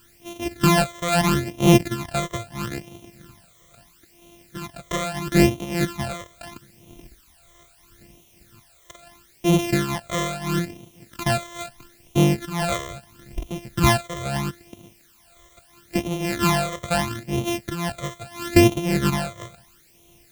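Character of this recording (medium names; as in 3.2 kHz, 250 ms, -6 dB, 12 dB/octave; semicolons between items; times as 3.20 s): a buzz of ramps at a fixed pitch in blocks of 128 samples; tremolo triangle 1.9 Hz, depth 85%; a quantiser's noise floor 10-bit, dither triangular; phasing stages 12, 0.76 Hz, lowest notch 260–1600 Hz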